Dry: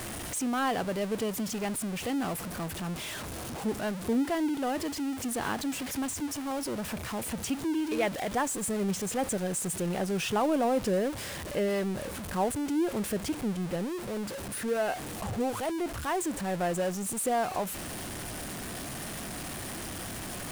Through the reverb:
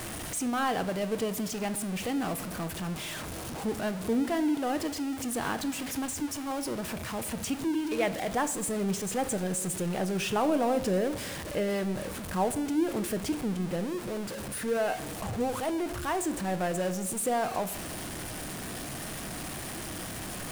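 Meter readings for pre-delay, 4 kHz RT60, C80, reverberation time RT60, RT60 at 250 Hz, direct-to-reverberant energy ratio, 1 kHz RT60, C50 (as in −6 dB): 6 ms, 0.65 s, 16.0 dB, 0.95 s, 1.2 s, 10.5 dB, 0.85 s, 14.5 dB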